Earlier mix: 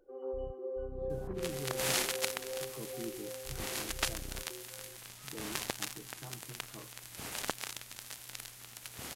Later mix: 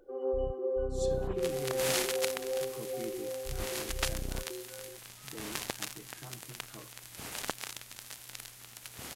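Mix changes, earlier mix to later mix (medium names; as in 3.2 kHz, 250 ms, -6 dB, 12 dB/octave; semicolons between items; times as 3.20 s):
speech: remove low-pass 1.4 kHz 24 dB/octave; first sound +7.0 dB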